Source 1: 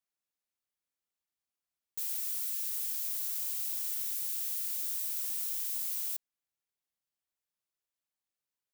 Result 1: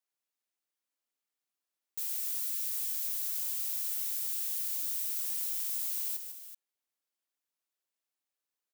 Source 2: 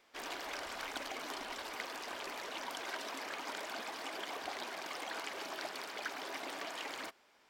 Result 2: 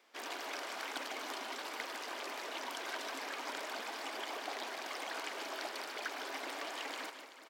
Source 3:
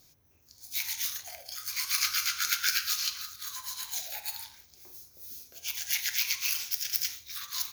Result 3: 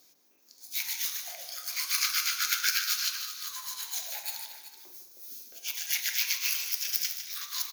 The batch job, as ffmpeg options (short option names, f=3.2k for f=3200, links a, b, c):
-filter_complex "[0:a]highpass=f=230:w=0.5412,highpass=f=230:w=1.3066,asplit=2[a][b];[b]aecho=0:1:152|223|381:0.335|0.141|0.237[c];[a][c]amix=inputs=2:normalize=0"